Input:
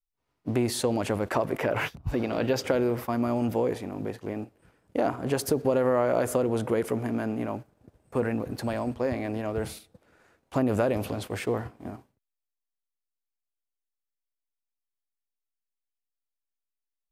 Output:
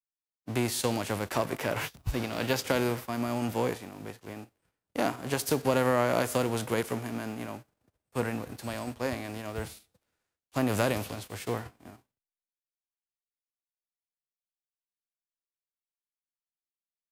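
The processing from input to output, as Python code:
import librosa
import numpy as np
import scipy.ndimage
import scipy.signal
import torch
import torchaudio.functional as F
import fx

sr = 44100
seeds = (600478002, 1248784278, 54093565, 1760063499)

y = fx.envelope_flatten(x, sr, power=0.6)
y = fx.band_widen(y, sr, depth_pct=70)
y = y * librosa.db_to_amplitude(-3.5)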